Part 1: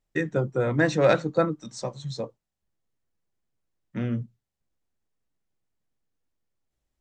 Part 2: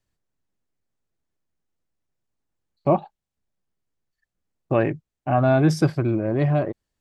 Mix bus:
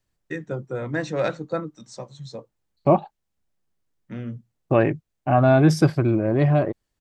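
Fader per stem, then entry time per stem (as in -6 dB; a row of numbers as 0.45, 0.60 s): -4.5, +2.0 dB; 0.15, 0.00 s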